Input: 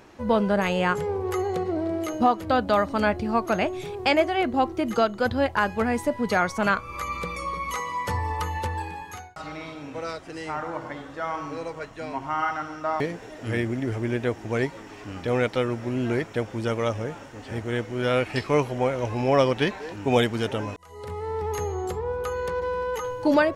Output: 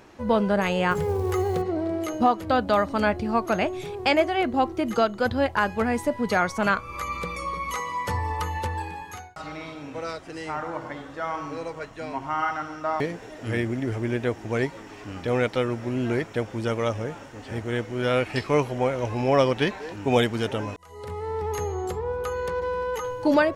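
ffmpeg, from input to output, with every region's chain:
-filter_complex "[0:a]asettb=1/sr,asplit=3[s0][s1][s2];[s0]atrim=end=0.914[s3];[s1]atrim=start=0.91:end=1.62,asetpts=PTS-STARTPTS,afade=t=in:d=0.004:c=qsin,afade=t=out:st=0.706:d=0.004:c=qsin,lowshelf=f=150:g=10.5,bandreject=f=60:t=h:w=6,bandreject=f=120:t=h:w=6,bandreject=f=180:t=h:w=6,bandreject=f=240:t=h:w=6,bandreject=f=300:t=h:w=6,acrusher=bits=7:mode=log:mix=0:aa=0.000001[s4];[s2]atrim=start=1.616[s5];[s3][s4]acrossfade=d=0.004:c1=hsin:c2=qsin[s6];[s6][s5]acrossfade=d=0.004:c1=qsin:c2=hsin"

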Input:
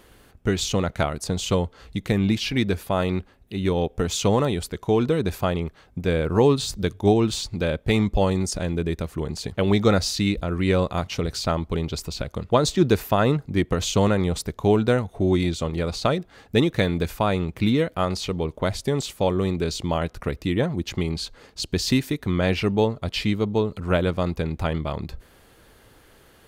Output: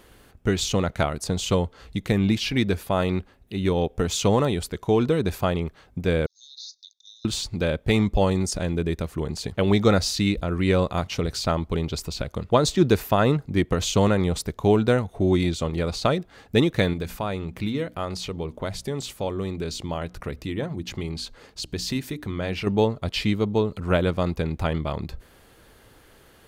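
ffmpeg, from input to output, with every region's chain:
-filter_complex "[0:a]asettb=1/sr,asplit=3[s0][s1][s2];[s0]atrim=end=6.264[s3];[s1]atrim=start=6.26:end=7.25,asetpts=PTS-STARTPTS,afade=t=in:d=0.004:c=qsin,afade=t=out:st=0.986:d=0.004:c=qsin,asuperpass=centerf=4900:order=20:qfactor=1.6,acompressor=threshold=0.00708:ratio=2:attack=3.2:release=140:knee=1:detection=peak[s4];[s2]atrim=start=7.246[s5];[s3][s4]acrossfade=d=0.004:c1=hsin:c2=qsin[s6];[s6][s5]acrossfade=d=0.004:c1=qsin:c2=hsin,asettb=1/sr,asplit=3[s7][s8][s9];[s7]atrim=end=16.934[s10];[s8]atrim=start=16.93:end=22.67,asetpts=PTS-STARTPTS,afade=t=in:d=0.004:c=qsin,afade=t=out:st=5.736:d=0.004:c=qsin,acompressor=threshold=0.0224:ratio=1.5:attack=3.2:release=140:knee=1:detection=peak,bandreject=f=60:t=h:w=6,bandreject=f=120:t=h:w=6,bandreject=f=180:t=h:w=6,bandreject=f=240:t=h:w=6,bandreject=f=300:t=h:w=6[s11];[s9]atrim=start=22.666[s12];[s10][s11]acrossfade=d=0.004:c1=hsin:c2=qsin[s13];[s13][s12]acrossfade=d=0.004:c1=qsin:c2=hsin"

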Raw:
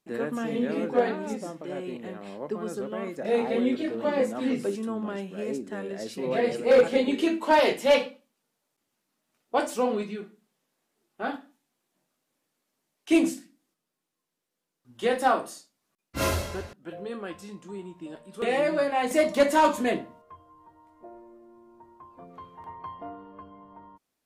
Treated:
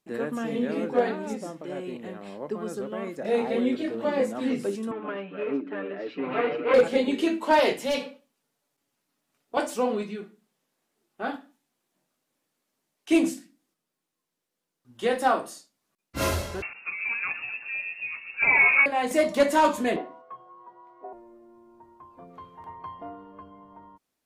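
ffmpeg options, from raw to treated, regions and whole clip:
-filter_complex "[0:a]asettb=1/sr,asplit=3[s0][s1][s2];[s0]atrim=end=4.914[s3];[s1]atrim=start=4.91:end=6.74,asetpts=PTS-STARTPTS,afade=t=in:d=0.004:c=qsin,afade=t=out:st=1.826:d=0.004:c=qsin,aeval=exprs='clip(val(0),-1,0.0335)':c=same,highpass=230,equalizer=f=290:t=q:w=4:g=6,equalizer=f=1300:t=q:w=4:g=7,equalizer=f=2500:t=q:w=4:g=5,lowpass=f=3000:w=0.5412,lowpass=f=3000:w=1.3066,aecho=1:1:6.8:0.7,atrim=end_sample=80703[s4];[s2]atrim=start=6.736[s5];[s3][s4]acrossfade=d=0.004:c1=hsin:c2=qsin[s6];[s6][s5]acrossfade=d=0.004:c1=qsin:c2=hsin,asettb=1/sr,asplit=3[s7][s8][s9];[s7]atrim=end=7.794[s10];[s8]atrim=start=7.79:end=9.57,asetpts=PTS-STARTPTS,afade=t=in:d=0.004:c=qsin,afade=t=out:st=1.776:d=0.004:c=qsin,aecho=1:1:7.1:0.32,atrim=end_sample=78498,acrossover=split=310|3000[s11][s12][s13];[s12]acompressor=threshold=0.0158:ratio=2:attack=3.2:release=140:knee=2.83:detection=peak[s14];[s11][s14][s13]amix=inputs=3:normalize=0[s15];[s9]atrim=start=9.566[s16];[s10][s15]acrossfade=d=0.004:c1=hsin:c2=qsin[s17];[s17][s16]acrossfade=d=0.004:c1=qsin:c2=hsin,asettb=1/sr,asplit=3[s18][s19][s20];[s18]atrim=end=16.624[s21];[s19]atrim=start=16.62:end=18.86,asetpts=PTS-STARTPTS,afade=t=in:d=0.004:c=qsin,afade=t=out:st=2.236:d=0.004:c=qsin,acontrast=29,asplit=8[s22][s23][s24][s25][s26][s27][s28][s29];[s23]adelay=122,afreqshift=-130,volume=0.282[s30];[s24]adelay=244,afreqshift=-260,volume=0.174[s31];[s25]adelay=366,afreqshift=-390,volume=0.108[s32];[s26]adelay=488,afreqshift=-520,volume=0.0668[s33];[s27]adelay=610,afreqshift=-650,volume=0.0417[s34];[s28]adelay=732,afreqshift=-780,volume=0.0257[s35];[s29]adelay=854,afreqshift=-910,volume=0.016[s36];[s22][s30][s31][s32][s33][s34][s35][s36]amix=inputs=8:normalize=0,atrim=end_sample=98784,lowpass=f=2400:t=q:w=0.5098,lowpass=f=2400:t=q:w=0.6013,lowpass=f=2400:t=q:w=0.9,lowpass=f=2400:t=q:w=2.563,afreqshift=-2800[s37];[s20]atrim=start=18.856[s38];[s21][s37]acrossfade=d=0.004:c1=hsin:c2=qsin[s39];[s39][s38]acrossfade=d=0.004:c1=qsin:c2=hsin,asettb=1/sr,asplit=3[s40][s41][s42];[s40]atrim=end=19.964[s43];[s41]atrim=start=19.96:end=21.13,asetpts=PTS-STARTPTS,afade=t=in:d=0.004:c=qsin,afade=t=out:st=1.166:d=0.004:c=qsin,equalizer=f=750:w=0.54:g=7,afreqshift=40,highpass=220,lowpass=4300[s44];[s42]atrim=start=21.126[s45];[s43][s44]acrossfade=d=0.004:c1=hsin:c2=qsin[s46];[s46][s45]acrossfade=d=0.004:c1=qsin:c2=hsin"

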